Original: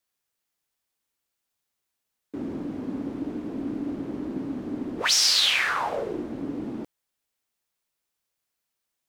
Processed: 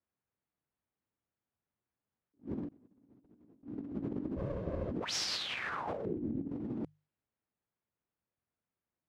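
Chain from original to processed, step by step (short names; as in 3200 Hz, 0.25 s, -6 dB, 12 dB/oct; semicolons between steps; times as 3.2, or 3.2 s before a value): 4.36–4.91 minimum comb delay 1.9 ms; HPF 96 Hz 12 dB/oct; RIAA curve playback; notches 50/100/150 Hz; low-pass opened by the level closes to 2200 Hz, open at -24.5 dBFS; 6.05–6.49 EQ curve 300 Hz 0 dB, 950 Hz -17 dB, 2400 Hz -12 dB, 8400 Hz -20 dB, 15000 Hz +13 dB; negative-ratio compressor -29 dBFS, ratio -0.5; 2.68–3.63 flipped gate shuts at -29 dBFS, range -26 dB; attack slew limiter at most 330 dB/s; gain -8 dB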